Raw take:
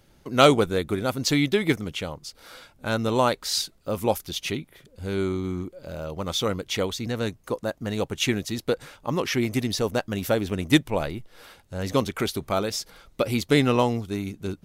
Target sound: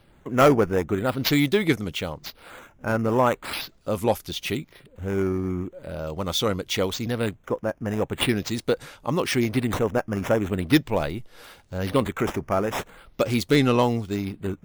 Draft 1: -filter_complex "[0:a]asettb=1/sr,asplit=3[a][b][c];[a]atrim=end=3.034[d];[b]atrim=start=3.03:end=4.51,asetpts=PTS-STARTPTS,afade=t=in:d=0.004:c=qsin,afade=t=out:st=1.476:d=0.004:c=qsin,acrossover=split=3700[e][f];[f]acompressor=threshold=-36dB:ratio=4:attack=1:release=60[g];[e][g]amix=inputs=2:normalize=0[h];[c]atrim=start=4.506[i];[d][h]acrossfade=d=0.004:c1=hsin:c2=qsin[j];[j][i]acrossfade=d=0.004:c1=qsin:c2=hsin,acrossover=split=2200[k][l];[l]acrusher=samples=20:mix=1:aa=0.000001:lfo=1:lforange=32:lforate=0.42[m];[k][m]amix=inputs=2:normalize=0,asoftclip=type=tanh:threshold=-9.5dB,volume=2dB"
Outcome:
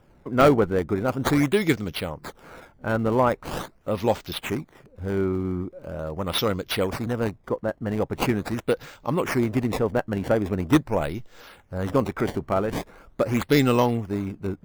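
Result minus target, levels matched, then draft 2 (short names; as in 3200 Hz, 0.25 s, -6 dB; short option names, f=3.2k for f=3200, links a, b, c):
decimation with a swept rate: distortion +13 dB
-filter_complex "[0:a]asettb=1/sr,asplit=3[a][b][c];[a]atrim=end=3.034[d];[b]atrim=start=3.03:end=4.51,asetpts=PTS-STARTPTS,afade=t=in:d=0.004:c=qsin,afade=t=out:st=1.476:d=0.004:c=qsin,acrossover=split=3700[e][f];[f]acompressor=threshold=-36dB:ratio=4:attack=1:release=60[g];[e][g]amix=inputs=2:normalize=0[h];[c]atrim=start=4.506[i];[d][h]acrossfade=d=0.004:c1=hsin:c2=qsin[j];[j][i]acrossfade=d=0.004:c1=qsin:c2=hsin,acrossover=split=2200[k][l];[l]acrusher=samples=6:mix=1:aa=0.000001:lfo=1:lforange=9.6:lforate=0.42[m];[k][m]amix=inputs=2:normalize=0,asoftclip=type=tanh:threshold=-9.5dB,volume=2dB"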